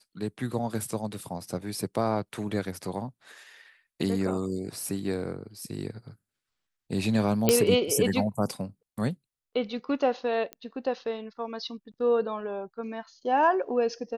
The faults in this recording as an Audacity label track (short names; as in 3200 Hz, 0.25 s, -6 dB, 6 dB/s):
7.490000	7.490000	pop -5 dBFS
10.530000	10.530000	pop -21 dBFS